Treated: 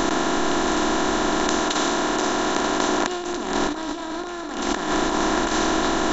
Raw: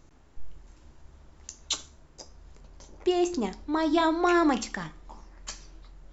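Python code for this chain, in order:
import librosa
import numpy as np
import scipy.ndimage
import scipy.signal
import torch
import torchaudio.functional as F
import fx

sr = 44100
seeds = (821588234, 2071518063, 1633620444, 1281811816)

y = fx.bin_compress(x, sr, power=0.2)
y = fx.low_shelf(y, sr, hz=150.0, db=-6.5, at=(1.6, 3.19))
y = fx.over_compress(y, sr, threshold_db=-22.0, ratio=-0.5)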